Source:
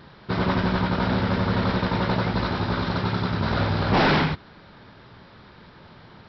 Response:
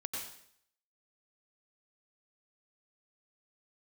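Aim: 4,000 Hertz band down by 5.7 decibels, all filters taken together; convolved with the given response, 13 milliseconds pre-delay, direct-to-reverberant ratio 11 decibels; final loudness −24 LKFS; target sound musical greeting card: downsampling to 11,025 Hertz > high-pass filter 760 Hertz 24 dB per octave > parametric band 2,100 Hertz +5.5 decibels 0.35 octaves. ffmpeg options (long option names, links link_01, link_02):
-filter_complex "[0:a]equalizer=frequency=4000:width_type=o:gain=-7.5,asplit=2[link_01][link_02];[1:a]atrim=start_sample=2205,adelay=13[link_03];[link_02][link_03]afir=irnorm=-1:irlink=0,volume=-12dB[link_04];[link_01][link_04]amix=inputs=2:normalize=0,aresample=11025,aresample=44100,highpass=frequency=760:width=0.5412,highpass=frequency=760:width=1.3066,equalizer=frequency=2100:width_type=o:width=0.35:gain=5.5,volume=4.5dB"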